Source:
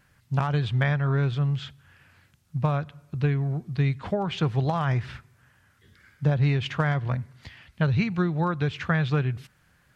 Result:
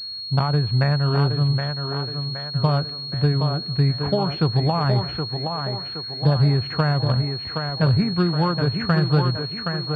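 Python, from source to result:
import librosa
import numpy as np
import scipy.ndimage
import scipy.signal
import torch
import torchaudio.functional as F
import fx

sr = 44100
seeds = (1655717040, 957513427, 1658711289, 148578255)

y = fx.env_lowpass_down(x, sr, base_hz=1700.0, full_db=-22.0)
y = fx.echo_thinned(y, sr, ms=770, feedback_pct=55, hz=190.0, wet_db=-4.5)
y = fx.pwm(y, sr, carrier_hz=4300.0)
y = y * librosa.db_to_amplitude(4.5)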